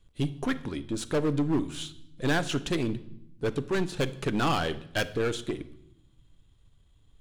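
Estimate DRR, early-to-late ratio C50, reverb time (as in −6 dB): 12.0 dB, 16.5 dB, 0.80 s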